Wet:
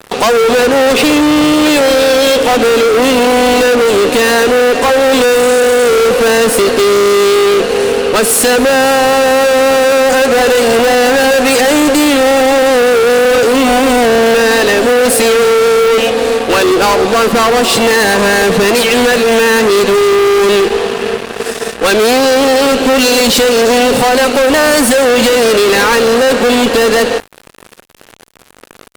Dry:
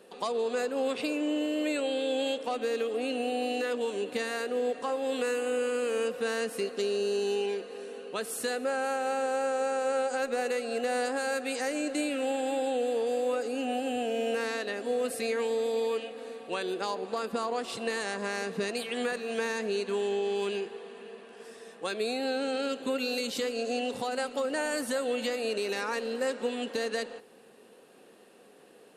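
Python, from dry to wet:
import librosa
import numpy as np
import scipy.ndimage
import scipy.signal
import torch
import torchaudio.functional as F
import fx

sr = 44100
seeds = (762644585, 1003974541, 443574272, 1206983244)

y = fx.fuzz(x, sr, gain_db=41.0, gate_db=-50.0)
y = y * 10.0 ** (6.0 / 20.0)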